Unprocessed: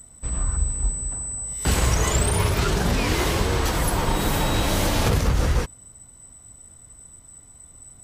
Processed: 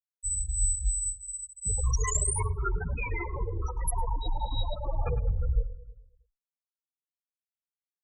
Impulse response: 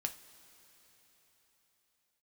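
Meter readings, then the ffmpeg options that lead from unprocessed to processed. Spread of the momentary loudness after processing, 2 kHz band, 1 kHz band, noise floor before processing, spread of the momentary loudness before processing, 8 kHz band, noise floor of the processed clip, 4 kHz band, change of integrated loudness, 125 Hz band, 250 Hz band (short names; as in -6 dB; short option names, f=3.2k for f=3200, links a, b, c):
7 LU, -13.0 dB, -10.0 dB, -49 dBFS, 7 LU, -3.5 dB, under -85 dBFS, -16.5 dB, -7.5 dB, -9.0 dB, -20.0 dB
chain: -filter_complex "[0:a]aeval=exprs='val(0)*gte(abs(val(0)),0.0376)':c=same,equalizer=f=150:w=0.35:g=-11,afftfilt=real='re*gte(hypot(re,im),0.158)':imag='im*gte(hypot(re,im),0.158)':win_size=1024:overlap=0.75,asplit=2[a][b];[b]adelay=105,lowpass=f=1.3k:p=1,volume=-12dB,asplit=2[c][d];[d]adelay=105,lowpass=f=1.3k:p=1,volume=0.54,asplit=2[e][f];[f]adelay=105,lowpass=f=1.3k:p=1,volume=0.54,asplit=2[g][h];[h]adelay=105,lowpass=f=1.3k:p=1,volume=0.54,asplit=2[i][j];[j]adelay=105,lowpass=f=1.3k:p=1,volume=0.54,asplit=2[k][l];[l]adelay=105,lowpass=f=1.3k:p=1,volume=0.54[m];[a][c][e][g][i][k][m]amix=inputs=7:normalize=0,asplit=2[n][o];[o]adelay=9.3,afreqshift=-2.8[p];[n][p]amix=inputs=2:normalize=1,volume=3.5dB"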